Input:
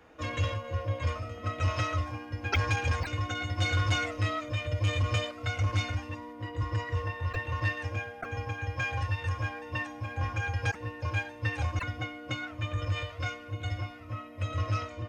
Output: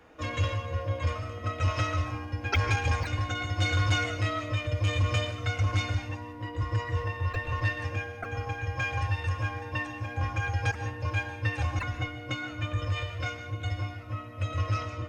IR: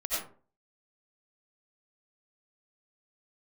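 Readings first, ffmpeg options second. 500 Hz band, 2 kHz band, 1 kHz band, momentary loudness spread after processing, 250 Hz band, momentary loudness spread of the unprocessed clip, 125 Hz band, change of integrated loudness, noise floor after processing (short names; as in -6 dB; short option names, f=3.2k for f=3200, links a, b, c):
+1.5 dB, +1.5 dB, +1.5 dB, 8 LU, +1.5 dB, 8 LU, +2.0 dB, +1.5 dB, -41 dBFS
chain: -filter_complex "[0:a]asplit=2[a][b];[1:a]atrim=start_sample=2205,asetrate=26901,aresample=44100,lowshelf=f=120:g=7.5[c];[b][c]afir=irnorm=-1:irlink=0,volume=-18dB[d];[a][d]amix=inputs=2:normalize=0"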